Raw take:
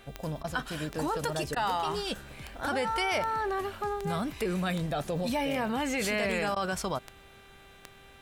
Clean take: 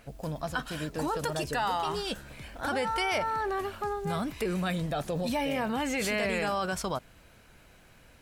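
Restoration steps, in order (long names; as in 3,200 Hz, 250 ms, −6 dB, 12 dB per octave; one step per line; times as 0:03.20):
click removal
hum removal 393.7 Hz, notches 10
repair the gap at 0:00.43/0:01.55/0:06.55, 11 ms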